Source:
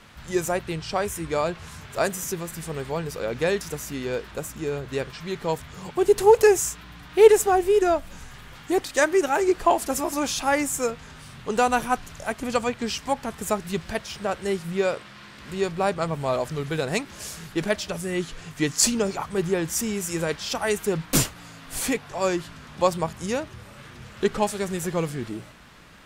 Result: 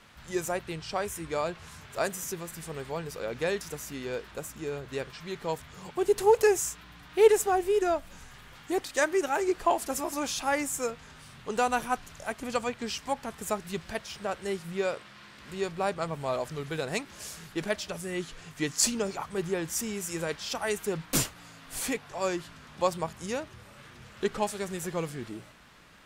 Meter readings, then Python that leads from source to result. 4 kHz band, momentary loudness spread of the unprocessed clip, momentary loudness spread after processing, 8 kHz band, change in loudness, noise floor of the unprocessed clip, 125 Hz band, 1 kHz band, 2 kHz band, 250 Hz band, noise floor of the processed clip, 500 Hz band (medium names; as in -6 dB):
-5.0 dB, 15 LU, 15 LU, -5.0 dB, -6.0 dB, -45 dBFS, -8.0 dB, -5.5 dB, -5.0 dB, -7.0 dB, -51 dBFS, -6.0 dB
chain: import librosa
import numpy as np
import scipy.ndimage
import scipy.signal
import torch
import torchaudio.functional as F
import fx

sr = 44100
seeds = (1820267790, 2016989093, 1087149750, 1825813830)

y = fx.low_shelf(x, sr, hz=320.0, db=-3.5)
y = y * 10.0 ** (-5.0 / 20.0)